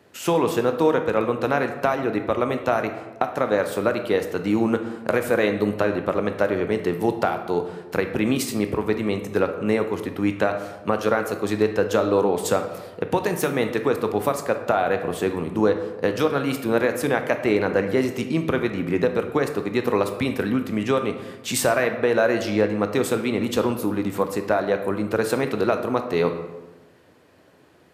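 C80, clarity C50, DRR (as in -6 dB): 11.0 dB, 8.5 dB, 6.5 dB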